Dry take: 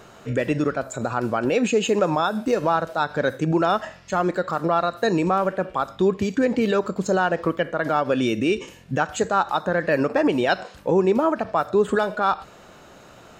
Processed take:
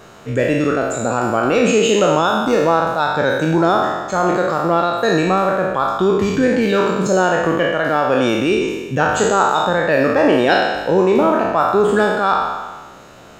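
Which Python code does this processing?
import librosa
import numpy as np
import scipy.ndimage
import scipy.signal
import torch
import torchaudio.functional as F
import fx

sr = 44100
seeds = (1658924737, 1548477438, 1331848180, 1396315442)

y = fx.spec_trails(x, sr, decay_s=1.34)
y = fx.peak_eq(y, sr, hz=2800.0, db=-11.0, octaves=0.27, at=(3.55, 4.27))
y = y * librosa.db_to_amplitude(2.5)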